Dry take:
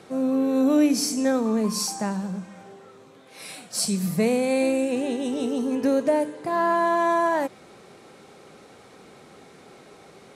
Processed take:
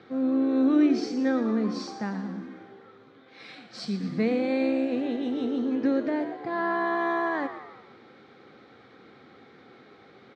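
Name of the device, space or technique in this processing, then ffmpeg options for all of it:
frequency-shifting delay pedal into a guitar cabinet: -filter_complex "[0:a]asplit=6[a][b][c][d][e][f];[b]adelay=116,afreqshift=67,volume=-11.5dB[g];[c]adelay=232,afreqshift=134,volume=-17.7dB[h];[d]adelay=348,afreqshift=201,volume=-23.9dB[i];[e]adelay=464,afreqshift=268,volume=-30.1dB[j];[f]adelay=580,afreqshift=335,volume=-36.3dB[k];[a][g][h][i][j][k]amix=inputs=6:normalize=0,highpass=100,equalizer=f=170:t=q:w=4:g=-9,equalizer=f=410:t=q:w=4:g=-4,equalizer=f=610:t=q:w=4:g=-10,equalizer=f=950:t=q:w=4:g=-9,equalizer=f=2.7k:t=q:w=4:g=-9,lowpass=f=3.7k:w=0.5412,lowpass=f=3.7k:w=1.3066"

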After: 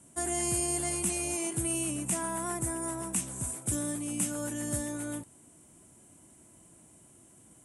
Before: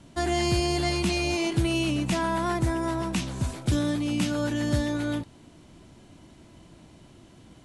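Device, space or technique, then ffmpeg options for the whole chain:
budget condenser microphone: -af "highpass=f=110:p=1,highshelf=f=6.3k:t=q:w=3:g=14,volume=-8dB"

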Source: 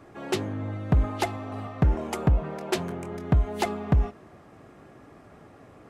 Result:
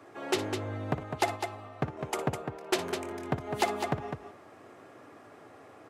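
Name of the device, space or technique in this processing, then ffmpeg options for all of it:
car stereo with a boomy subwoofer: -filter_complex "[0:a]lowshelf=f=130:t=q:w=3:g=13,alimiter=limit=-4.5dB:level=0:latency=1:release=166,highpass=f=210:w=0.5412,highpass=f=210:w=1.3066,asettb=1/sr,asplit=3[a][b][c];[a]atrim=end=1.034[d];[b]atrim=start=1.03:end=2.81,asetpts=PTS-STARTPTS,afade=t=in:d=0.004:c=qsin,afade=t=out:st=1.776:d=0.004:c=qsin,agate=range=-8dB:threshold=-34dB:ratio=16:detection=peak[e];[c]atrim=start=2.806[f];[d][e]acrossfade=d=0.004:c1=hsin:c2=qsin[g];[g][f]acrossfade=d=0.004:c1=qsin:c2=hsin,aecho=1:1:58.31|204.1:0.251|0.447"

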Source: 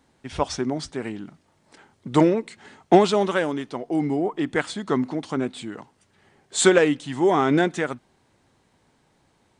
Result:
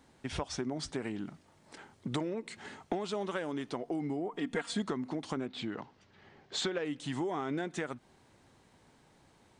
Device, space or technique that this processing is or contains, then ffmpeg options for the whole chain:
serial compression, peaks first: -filter_complex "[0:a]asettb=1/sr,asplit=3[a][b][c];[a]atrim=end=5.464[d];[b]atrim=start=5.46:end=6.85,asetpts=PTS-STARTPTS,afade=t=in:d=0.004:c=qsin,afade=t=out:st=1.386:d=0.004:c=qsin,lowpass=f=5.4k:w=0.5412,lowpass=f=5.4k:w=1.3066[e];[c]atrim=start=6.846[f];[d][e]acrossfade=d=0.004:c1=hsin:c2=qsin[g];[g][f]acrossfade=d=0.004:c1=qsin:c2=hsin,acompressor=threshold=-27dB:ratio=4,acompressor=threshold=-36dB:ratio=2,asettb=1/sr,asplit=3[h][i][j];[h]atrim=end=4.324[k];[i]atrim=start=4.32:end=4.82,asetpts=PTS-STARTPTS,afade=t=in:d=0.004:c=qsin,afade=t=out:st=0.496:d=0.004:c=qsin,aecho=1:1:4.3:0.76,atrim=end_sample=22050[l];[j]atrim=start=4.816[m];[k][l]acrossfade=d=0.004:c1=hsin:c2=qsin[n];[n][m]acrossfade=d=0.004:c1=qsin:c2=hsin"

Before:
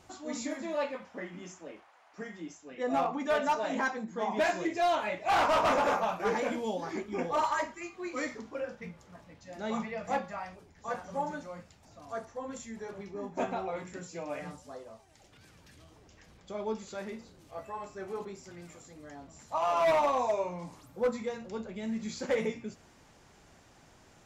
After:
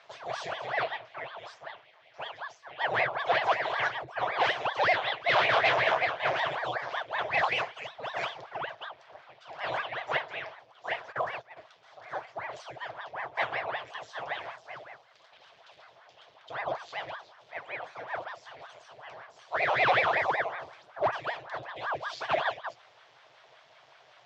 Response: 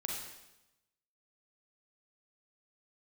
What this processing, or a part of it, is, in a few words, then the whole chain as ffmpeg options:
voice changer toy: -filter_complex "[0:a]asplit=3[a][b][c];[a]afade=t=out:st=11.11:d=0.02[d];[b]agate=range=-15dB:threshold=-39dB:ratio=16:detection=peak,afade=t=in:st=11.11:d=0.02,afade=t=out:st=11.56:d=0.02[e];[c]afade=t=in:st=11.56:d=0.02[f];[d][e][f]amix=inputs=3:normalize=0,aeval=exprs='val(0)*sin(2*PI*760*n/s+760*0.9/5.3*sin(2*PI*5.3*n/s))':c=same,highpass=560,equalizer=f=660:t=q:w=4:g=7,equalizer=f=1.3k:t=q:w=4:g=-3,equalizer=f=3.3k:t=q:w=4:g=5,lowpass=f=4.8k:w=0.5412,lowpass=f=4.8k:w=1.3066,lowshelf=f=170:t=q:w=3:g=11,volume=5.5dB"

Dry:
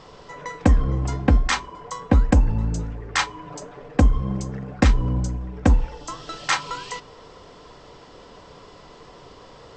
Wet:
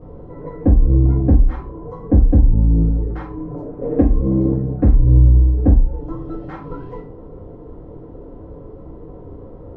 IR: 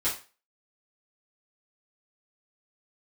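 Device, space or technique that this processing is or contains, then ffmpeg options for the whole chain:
television next door: -filter_complex "[0:a]asettb=1/sr,asplit=3[a][b][c];[a]atrim=end=3.814[d];[b]atrim=start=3.81:end=4.53,asetpts=PTS-STARTPTS,afade=t=in:d=0.004:c=qsin,afade=t=out:st=0.716:d=0.004:c=qsin,equalizer=f=250:t=o:w=1:g=9,equalizer=f=500:t=o:w=1:g=9,equalizer=f=1k:t=o:w=1:g=5,equalizer=f=2k:t=o:w=1:g=9,equalizer=f=4k:t=o:w=1:g=11[e];[c]atrim=start=4.526[f];[d][e]acrossfade=d=0.004:c1=hsin:c2=qsin[g];[g][f]acrossfade=d=0.004:c1=qsin:c2=hsin,acompressor=threshold=-23dB:ratio=6,lowpass=350[h];[1:a]atrim=start_sample=2205[i];[h][i]afir=irnorm=-1:irlink=0,volume=6dB"

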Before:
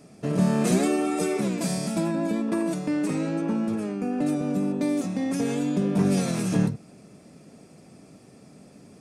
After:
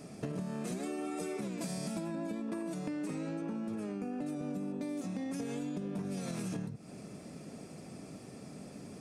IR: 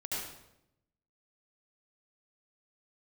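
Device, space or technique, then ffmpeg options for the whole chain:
serial compression, leveller first: -af "acompressor=threshold=-25dB:ratio=3,acompressor=threshold=-38dB:ratio=6,volume=2dB"

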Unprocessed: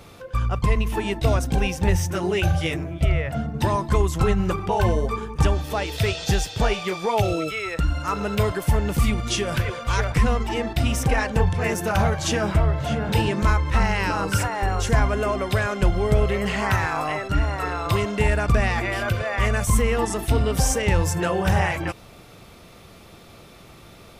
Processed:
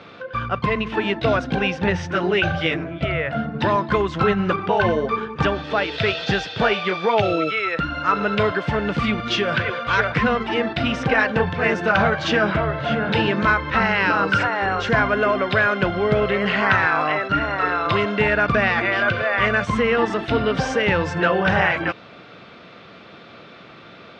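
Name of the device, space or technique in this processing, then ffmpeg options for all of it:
kitchen radio: -af "highpass=190,equalizer=f=370:t=q:w=4:g=-3,equalizer=f=850:t=q:w=4:g=-4,equalizer=f=1.5k:t=q:w=4:g=6,lowpass=f=4k:w=0.5412,lowpass=f=4k:w=1.3066,volume=5.5dB"

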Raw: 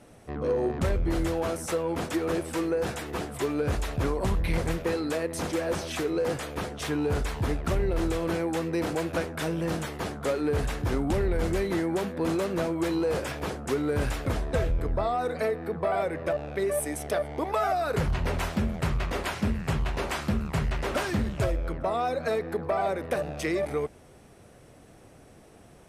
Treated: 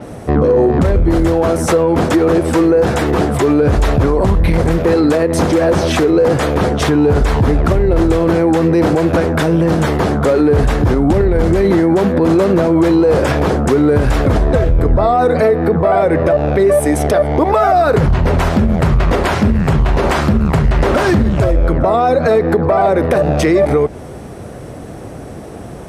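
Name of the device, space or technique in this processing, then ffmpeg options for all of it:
mastering chain: -af "highpass=41,equalizer=f=2.6k:t=o:w=0.61:g=-2.5,acompressor=threshold=-31dB:ratio=2,tiltshelf=f=1.4k:g=4,alimiter=level_in=23.5dB:limit=-1dB:release=50:level=0:latency=1,adynamicequalizer=threshold=0.0178:dfrequency=7000:dqfactor=0.7:tfrequency=7000:tqfactor=0.7:attack=5:release=100:ratio=0.375:range=2.5:mode=cutabove:tftype=highshelf,volume=-3.5dB"

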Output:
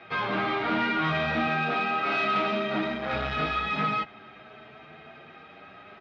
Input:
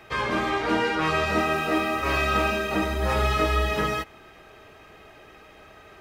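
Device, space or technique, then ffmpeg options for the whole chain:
barber-pole flanger into a guitar amplifier: -filter_complex "[0:a]asplit=2[a][b];[b]adelay=8.3,afreqshift=0.54[c];[a][c]amix=inputs=2:normalize=1,asoftclip=type=tanh:threshold=-26.5dB,highpass=100,equalizer=f=150:t=q:w=4:g=10,equalizer=f=230:t=q:w=4:g=10,equalizer=f=720:t=q:w=4:g=7,equalizer=f=1.4k:t=q:w=4:g=8,equalizer=f=2.3k:t=q:w=4:g=6,equalizer=f=3.6k:t=q:w=4:g=5,lowpass=f=4.4k:w=0.5412,lowpass=f=4.4k:w=1.3066,asettb=1/sr,asplit=3[d][e][f];[d]atrim=end=1.474[g];[e]atrim=start=1.47:end=3.13,asetpts=PTS-STARTPTS,afade=t=in:d=0.004:c=qsin,afade=t=out:st=1.656:d=0.004:c=qsin,highpass=150[h];[f]atrim=start=3.126[i];[g][h]acrossfade=d=0.004:c1=hsin:c2=qsin[j];[j][i]acrossfade=d=0.004:c1=qsin:c2=hsin"

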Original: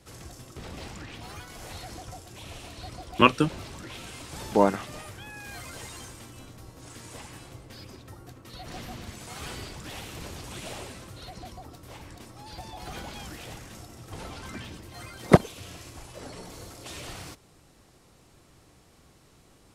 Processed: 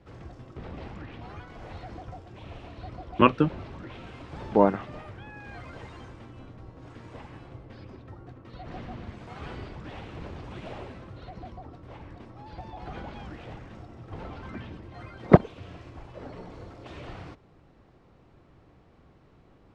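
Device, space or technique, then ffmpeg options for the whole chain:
phone in a pocket: -af "lowpass=3.2k,highshelf=f=2.1k:g=-10,volume=1.5dB"

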